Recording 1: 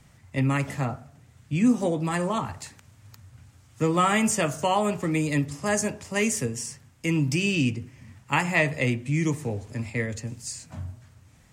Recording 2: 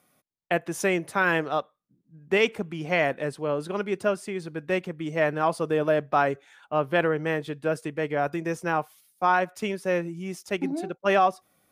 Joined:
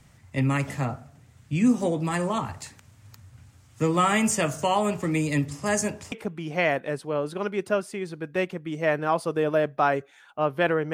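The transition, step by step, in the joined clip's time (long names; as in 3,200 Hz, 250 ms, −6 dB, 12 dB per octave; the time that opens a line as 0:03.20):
recording 1
0:06.12: continue with recording 2 from 0:02.46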